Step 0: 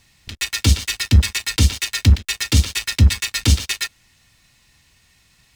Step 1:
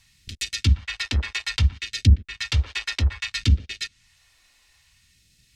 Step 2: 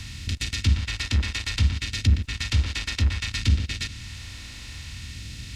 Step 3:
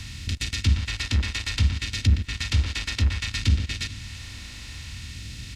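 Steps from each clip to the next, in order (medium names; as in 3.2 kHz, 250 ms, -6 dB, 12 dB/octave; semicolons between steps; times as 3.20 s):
phase shifter stages 2, 0.61 Hz, lowest notch 130–1000 Hz; low-pass that closes with the level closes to 1.1 kHz, closed at -12 dBFS; trim -3.5 dB
spectral levelling over time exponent 0.4; trim -6 dB
feedback delay 448 ms, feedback 57%, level -22.5 dB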